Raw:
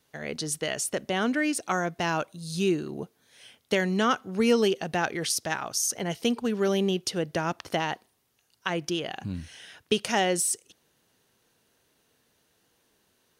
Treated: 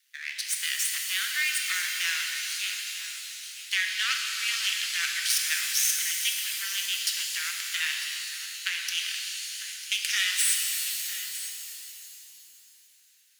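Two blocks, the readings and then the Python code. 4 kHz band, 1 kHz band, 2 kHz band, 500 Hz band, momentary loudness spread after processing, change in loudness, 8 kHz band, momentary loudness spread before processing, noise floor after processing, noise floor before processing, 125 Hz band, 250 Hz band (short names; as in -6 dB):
+7.0 dB, -14.0 dB, +4.5 dB, under -40 dB, 12 LU, +1.0 dB, +5.0 dB, 12 LU, -58 dBFS, -70 dBFS, under -40 dB, under -40 dB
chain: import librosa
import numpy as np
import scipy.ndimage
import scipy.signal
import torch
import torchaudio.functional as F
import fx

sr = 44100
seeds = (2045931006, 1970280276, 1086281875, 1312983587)

p1 = np.maximum(x, 0.0)
p2 = scipy.signal.sosfilt(scipy.signal.butter(6, 1700.0, 'highpass', fs=sr, output='sos'), p1)
p3 = p2 + fx.echo_single(p2, sr, ms=950, db=-14.0, dry=0)
p4 = fx.rev_shimmer(p3, sr, seeds[0], rt60_s=2.7, semitones=7, shimmer_db=-2, drr_db=1.5)
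y = F.gain(torch.from_numpy(p4), 6.5).numpy()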